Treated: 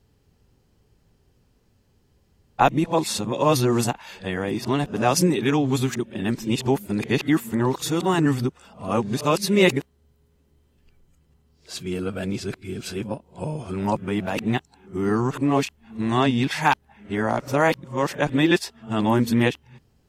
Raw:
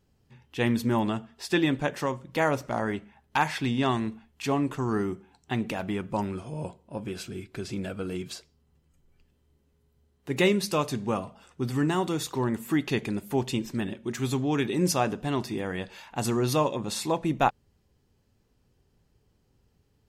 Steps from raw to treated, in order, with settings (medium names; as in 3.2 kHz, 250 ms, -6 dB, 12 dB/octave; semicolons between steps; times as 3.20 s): reverse the whole clip; trim +5.5 dB